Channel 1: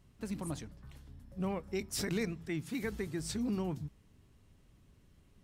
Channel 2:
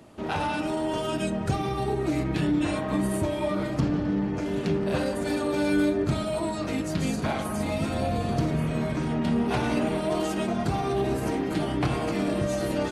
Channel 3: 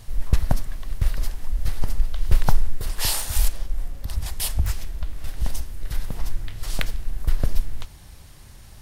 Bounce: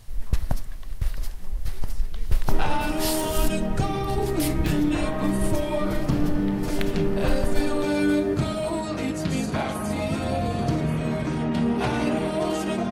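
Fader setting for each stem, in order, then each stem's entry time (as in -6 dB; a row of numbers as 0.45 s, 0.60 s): -18.0 dB, +1.5 dB, -4.5 dB; 0.00 s, 2.30 s, 0.00 s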